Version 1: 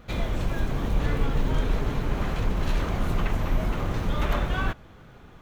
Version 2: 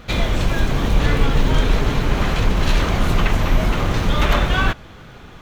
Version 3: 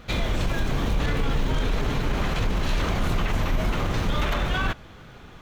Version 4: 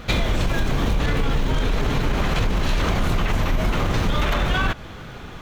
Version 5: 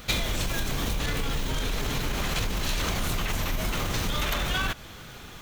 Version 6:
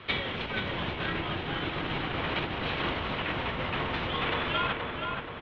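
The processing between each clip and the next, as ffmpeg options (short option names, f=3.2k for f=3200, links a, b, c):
-af "equalizer=f=4.2k:t=o:w=2.5:g=6,volume=8dB"
-af "alimiter=limit=-10.5dB:level=0:latency=1:release=20,volume=-5dB"
-af "acompressor=threshold=-25dB:ratio=6,volume=8.5dB"
-af "crystalizer=i=4:c=0,volume=-8.5dB"
-filter_complex "[0:a]asplit=2[a][b];[b]adelay=476,lowpass=f=2.2k:p=1,volume=-3dB,asplit=2[c][d];[d]adelay=476,lowpass=f=2.2k:p=1,volume=0.54,asplit=2[e][f];[f]adelay=476,lowpass=f=2.2k:p=1,volume=0.54,asplit=2[g][h];[h]adelay=476,lowpass=f=2.2k:p=1,volume=0.54,asplit=2[i][j];[j]adelay=476,lowpass=f=2.2k:p=1,volume=0.54,asplit=2[k][l];[l]adelay=476,lowpass=f=2.2k:p=1,volume=0.54,asplit=2[m][n];[n]adelay=476,lowpass=f=2.2k:p=1,volume=0.54[o];[a][c][e][g][i][k][m][o]amix=inputs=8:normalize=0,highpass=f=200:t=q:w=0.5412,highpass=f=200:t=q:w=1.307,lowpass=f=3.5k:t=q:w=0.5176,lowpass=f=3.5k:t=q:w=0.7071,lowpass=f=3.5k:t=q:w=1.932,afreqshift=-120"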